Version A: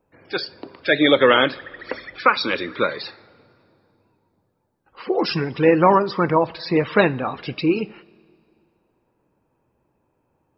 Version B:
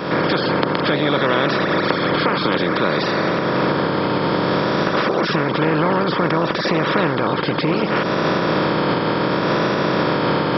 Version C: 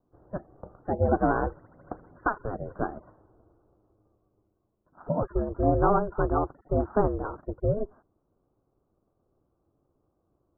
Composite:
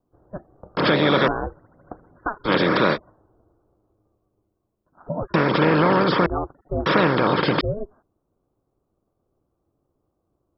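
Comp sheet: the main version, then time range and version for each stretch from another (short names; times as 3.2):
C
0.77–1.28 from B
2.47–2.95 from B, crossfade 0.06 s
5.34–6.26 from B
6.86–7.61 from B
not used: A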